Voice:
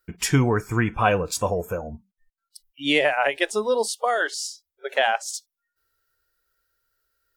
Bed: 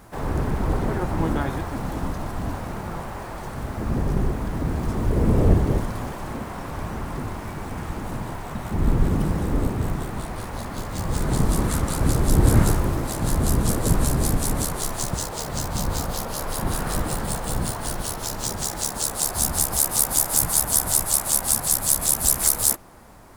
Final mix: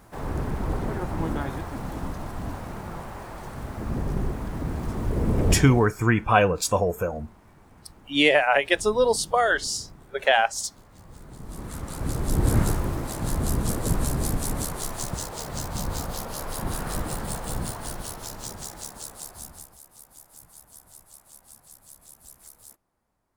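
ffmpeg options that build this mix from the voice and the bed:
ffmpeg -i stem1.wav -i stem2.wav -filter_complex "[0:a]adelay=5300,volume=1.5dB[link_01];[1:a]volume=12.5dB,afade=type=out:start_time=5.52:duration=0.41:silence=0.141254,afade=type=in:start_time=11.4:duration=1.14:silence=0.141254,afade=type=out:start_time=17.53:duration=2.25:silence=0.0595662[link_02];[link_01][link_02]amix=inputs=2:normalize=0" out.wav

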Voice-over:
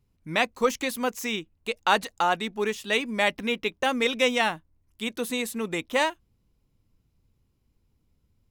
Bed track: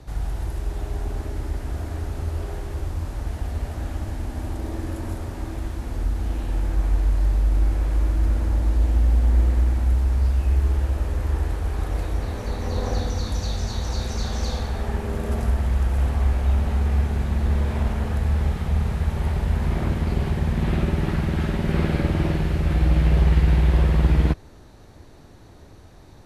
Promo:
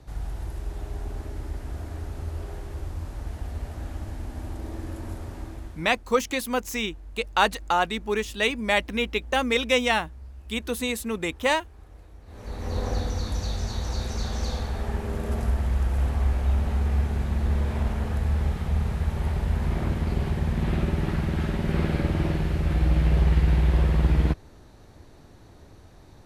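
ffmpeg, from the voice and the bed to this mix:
ffmpeg -i stem1.wav -i stem2.wav -filter_complex "[0:a]adelay=5500,volume=1dB[link_01];[1:a]volume=14dB,afade=type=out:start_time=5.36:duration=0.66:silence=0.141254,afade=type=in:start_time=12.25:duration=0.51:silence=0.105925[link_02];[link_01][link_02]amix=inputs=2:normalize=0" out.wav

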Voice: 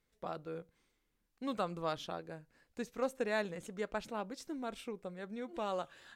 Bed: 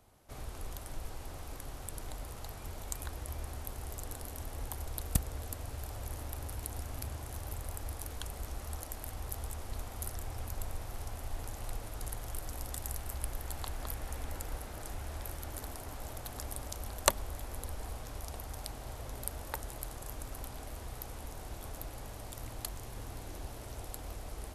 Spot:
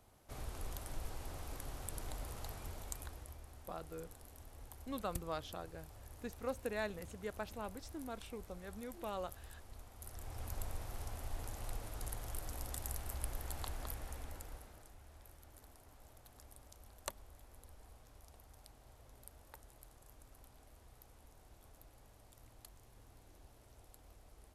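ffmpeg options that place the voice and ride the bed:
ffmpeg -i stem1.wav -i stem2.wav -filter_complex "[0:a]adelay=3450,volume=-5dB[link_01];[1:a]volume=8dB,afade=type=out:start_time=2.48:duration=0.93:silence=0.266073,afade=type=in:start_time=9.99:duration=0.54:silence=0.316228,afade=type=out:start_time=13.67:duration=1.24:silence=0.199526[link_02];[link_01][link_02]amix=inputs=2:normalize=0" out.wav

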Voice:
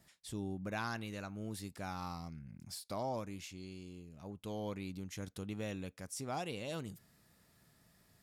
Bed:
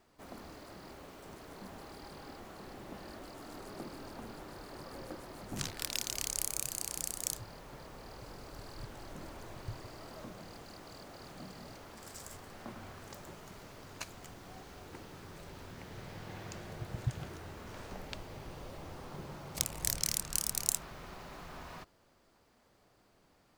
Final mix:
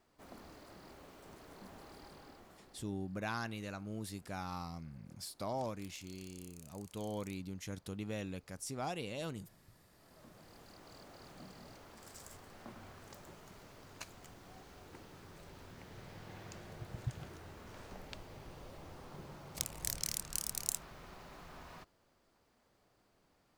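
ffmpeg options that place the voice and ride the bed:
ffmpeg -i stem1.wav -i stem2.wav -filter_complex "[0:a]adelay=2500,volume=0dB[link_01];[1:a]volume=12dB,afade=type=out:start_time=2:duration=0.97:silence=0.141254,afade=type=in:start_time=9.9:duration=1.05:silence=0.141254[link_02];[link_01][link_02]amix=inputs=2:normalize=0" out.wav

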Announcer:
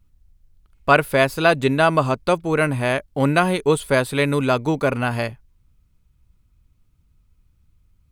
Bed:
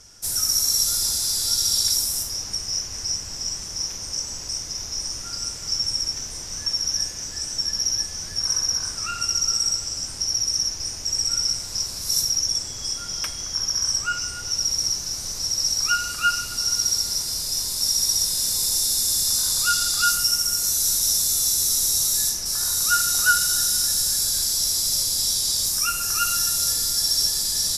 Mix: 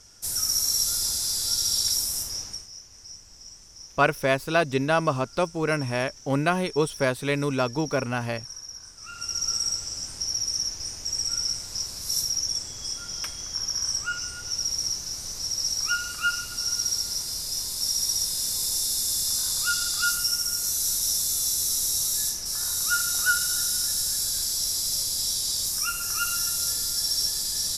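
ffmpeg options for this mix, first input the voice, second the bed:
ffmpeg -i stem1.wav -i stem2.wav -filter_complex "[0:a]adelay=3100,volume=-6dB[link_01];[1:a]volume=9dB,afade=type=out:start_time=2.38:duration=0.31:silence=0.211349,afade=type=in:start_time=8.97:duration=0.52:silence=0.237137[link_02];[link_01][link_02]amix=inputs=2:normalize=0" out.wav

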